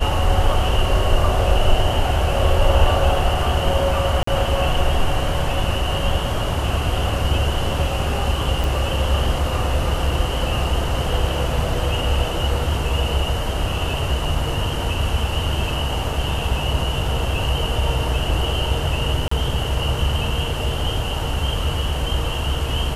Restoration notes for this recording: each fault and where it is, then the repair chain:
0:04.23–0:04.27: drop-out 44 ms
0:08.64: click
0:19.28–0:19.31: drop-out 34 ms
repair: click removal
repair the gap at 0:04.23, 44 ms
repair the gap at 0:19.28, 34 ms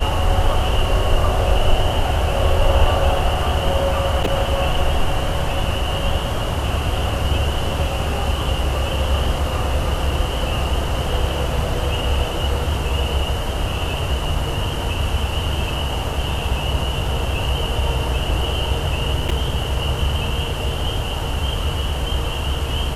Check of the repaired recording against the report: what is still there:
none of them is left

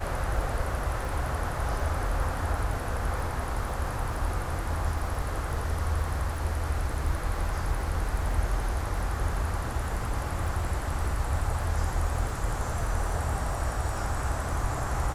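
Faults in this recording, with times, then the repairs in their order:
surface crackle 37 per second −36 dBFS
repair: click removal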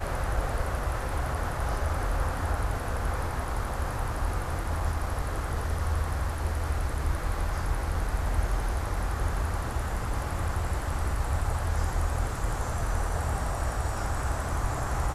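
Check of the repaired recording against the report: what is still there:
none of them is left

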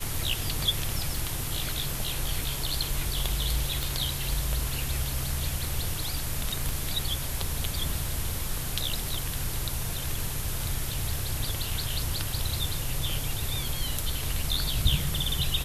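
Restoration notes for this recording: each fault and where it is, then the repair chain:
0:01.16: click
0:03.83: click
0:06.69: click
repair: click removal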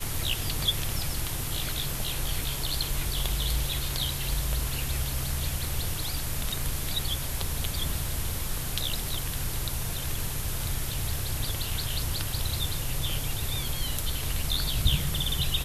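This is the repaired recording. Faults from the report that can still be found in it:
none of them is left

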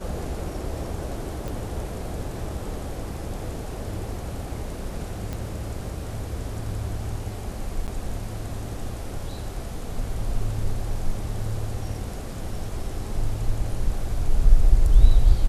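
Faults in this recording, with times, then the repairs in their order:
0:01.48: click
0:05.33: click −18 dBFS
0:07.87–0:07.88: drop-out 8.7 ms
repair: click removal
repair the gap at 0:07.87, 8.7 ms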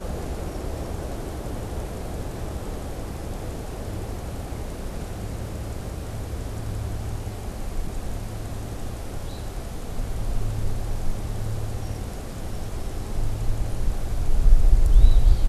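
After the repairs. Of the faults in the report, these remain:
none of them is left

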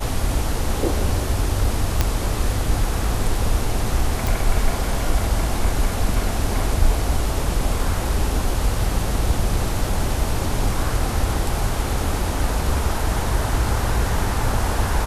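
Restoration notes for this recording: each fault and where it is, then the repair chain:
0:02.01: click −3 dBFS
0:04.27: click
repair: click removal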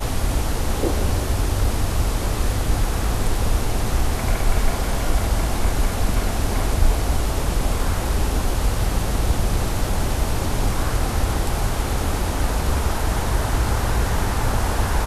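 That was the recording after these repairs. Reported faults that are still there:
none of them is left

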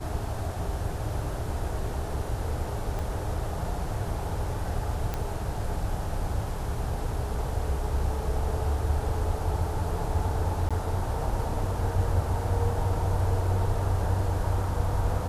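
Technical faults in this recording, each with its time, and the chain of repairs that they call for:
0:02.99: click
0:05.14: click −16 dBFS
0:10.69–0:10.71: drop-out 16 ms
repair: click removal
repair the gap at 0:10.69, 16 ms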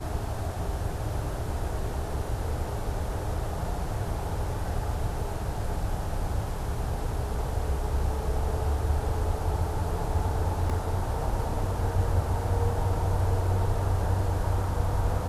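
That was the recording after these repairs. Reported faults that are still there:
0:02.99: click

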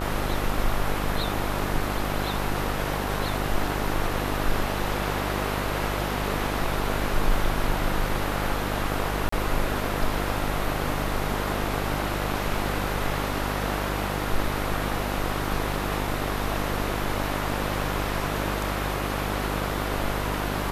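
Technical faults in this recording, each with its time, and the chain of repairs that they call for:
mains buzz 50 Hz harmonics 29 −30 dBFS
0:09.29–0:09.32: drop-out 34 ms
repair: hum removal 50 Hz, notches 29
repair the gap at 0:09.29, 34 ms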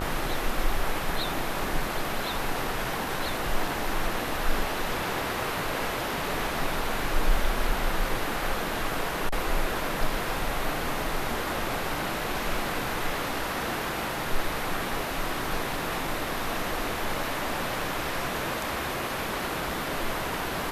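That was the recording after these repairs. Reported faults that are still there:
none of them is left

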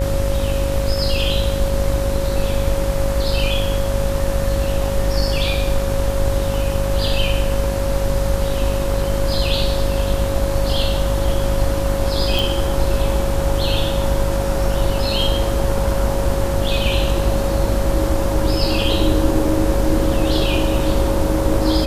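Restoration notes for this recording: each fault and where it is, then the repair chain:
mains buzz 50 Hz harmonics 38 −22 dBFS
whistle 550 Hz −23 dBFS
0:12.39: click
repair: click removal
notch filter 550 Hz, Q 30
hum removal 50 Hz, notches 38

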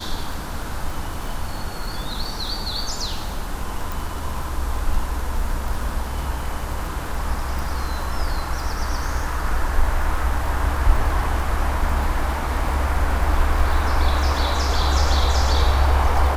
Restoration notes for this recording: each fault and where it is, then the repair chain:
surface crackle 27 per second −27 dBFS
0:03.92: click
0:07.59: click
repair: click removal

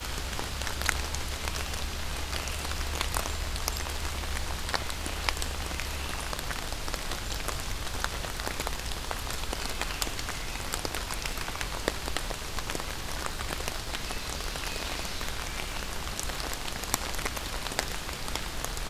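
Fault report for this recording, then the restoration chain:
surface crackle 25 per second −39 dBFS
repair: click removal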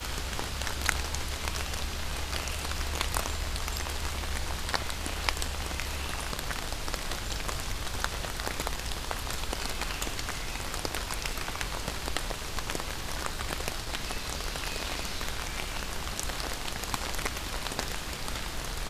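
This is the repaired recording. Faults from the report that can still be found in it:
none of them is left

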